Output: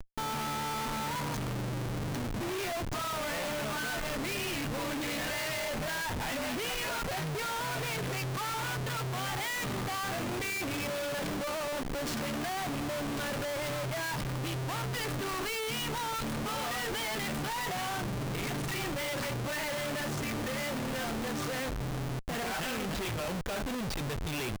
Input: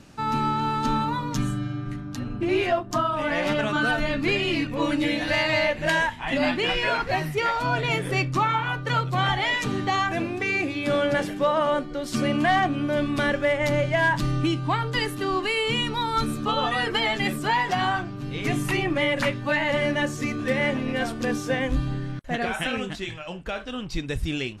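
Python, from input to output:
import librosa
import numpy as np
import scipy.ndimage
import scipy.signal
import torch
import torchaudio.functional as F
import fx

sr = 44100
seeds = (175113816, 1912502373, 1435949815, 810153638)

y = fx.dynamic_eq(x, sr, hz=320.0, q=4.4, threshold_db=-43.0, ratio=4.0, max_db=-8)
y = fx.schmitt(y, sr, flips_db=-39.0)
y = y * librosa.db_to_amplitude(-8.5)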